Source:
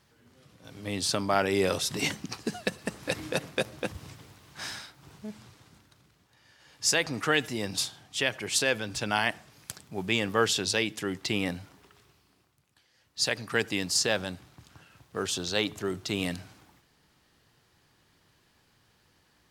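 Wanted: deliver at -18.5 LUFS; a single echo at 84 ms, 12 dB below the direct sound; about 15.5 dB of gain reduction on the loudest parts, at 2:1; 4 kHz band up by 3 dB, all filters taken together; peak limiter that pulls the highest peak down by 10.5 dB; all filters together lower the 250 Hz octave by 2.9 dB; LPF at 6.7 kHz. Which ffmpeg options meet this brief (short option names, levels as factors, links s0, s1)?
-af "lowpass=6700,equalizer=f=250:t=o:g=-4,equalizer=f=4000:t=o:g=4.5,acompressor=threshold=0.00316:ratio=2,alimiter=level_in=2.24:limit=0.0631:level=0:latency=1,volume=0.447,aecho=1:1:84:0.251,volume=21.1"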